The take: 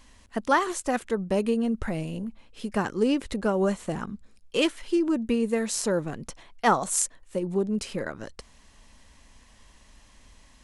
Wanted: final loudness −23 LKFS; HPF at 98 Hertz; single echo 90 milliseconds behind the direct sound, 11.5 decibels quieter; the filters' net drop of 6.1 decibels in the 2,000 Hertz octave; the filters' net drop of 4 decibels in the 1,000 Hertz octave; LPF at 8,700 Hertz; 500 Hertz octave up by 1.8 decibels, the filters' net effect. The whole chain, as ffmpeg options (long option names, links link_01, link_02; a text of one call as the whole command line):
ffmpeg -i in.wav -af "highpass=98,lowpass=8700,equalizer=frequency=500:width_type=o:gain=3.5,equalizer=frequency=1000:width_type=o:gain=-5,equalizer=frequency=2000:width_type=o:gain=-6.5,aecho=1:1:90:0.266,volume=4dB" out.wav